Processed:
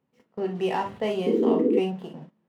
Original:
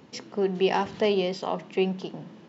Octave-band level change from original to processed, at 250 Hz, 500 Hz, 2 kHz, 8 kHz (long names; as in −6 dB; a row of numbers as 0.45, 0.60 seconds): +4.0 dB, +1.0 dB, −4.0 dB, can't be measured